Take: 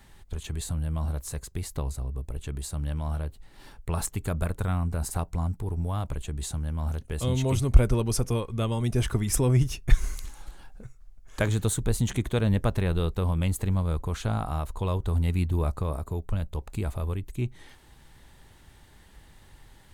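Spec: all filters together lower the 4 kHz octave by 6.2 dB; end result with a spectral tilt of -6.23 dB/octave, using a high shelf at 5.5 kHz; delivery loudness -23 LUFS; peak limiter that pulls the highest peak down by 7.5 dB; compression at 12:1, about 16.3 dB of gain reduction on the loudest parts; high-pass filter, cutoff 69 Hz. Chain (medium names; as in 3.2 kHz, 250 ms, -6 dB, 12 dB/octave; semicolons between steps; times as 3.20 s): high-pass 69 Hz; peaking EQ 4 kHz -6 dB; treble shelf 5.5 kHz -5.5 dB; compression 12:1, threshold -31 dBFS; trim +15.5 dB; peak limiter -12.5 dBFS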